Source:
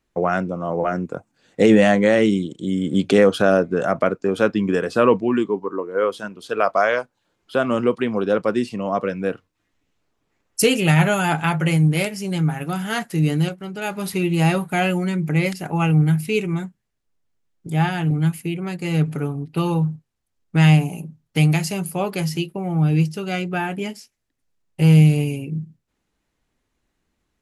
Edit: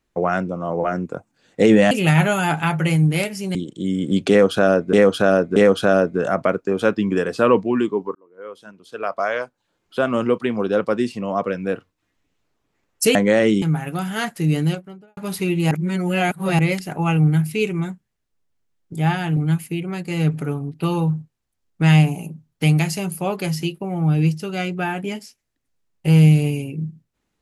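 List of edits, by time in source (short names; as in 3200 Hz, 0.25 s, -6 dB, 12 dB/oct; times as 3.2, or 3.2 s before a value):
1.91–2.38 swap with 10.72–12.36
3.13–3.76 loop, 3 plays
5.72–7.6 fade in
13.4–13.91 studio fade out
14.45–15.33 reverse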